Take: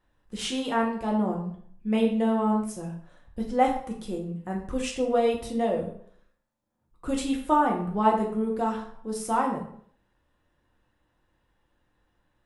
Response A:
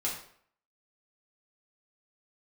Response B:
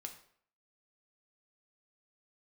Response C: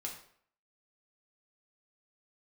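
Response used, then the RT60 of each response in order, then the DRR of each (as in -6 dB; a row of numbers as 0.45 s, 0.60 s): C; 0.60 s, 0.60 s, 0.60 s; -5.0 dB, 4.0 dB, -1.0 dB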